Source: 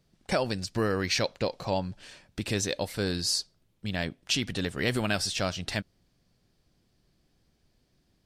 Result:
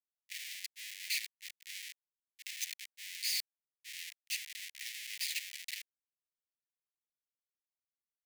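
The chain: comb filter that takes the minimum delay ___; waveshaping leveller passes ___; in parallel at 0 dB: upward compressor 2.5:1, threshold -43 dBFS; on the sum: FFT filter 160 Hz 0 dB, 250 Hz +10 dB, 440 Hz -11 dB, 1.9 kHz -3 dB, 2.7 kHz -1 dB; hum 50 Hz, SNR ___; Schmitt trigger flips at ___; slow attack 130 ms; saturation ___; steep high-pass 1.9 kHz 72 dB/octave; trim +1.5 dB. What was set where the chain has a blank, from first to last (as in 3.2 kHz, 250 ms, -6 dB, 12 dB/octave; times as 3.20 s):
0.45 ms, 1, 21 dB, -24 dBFS, -33.5 dBFS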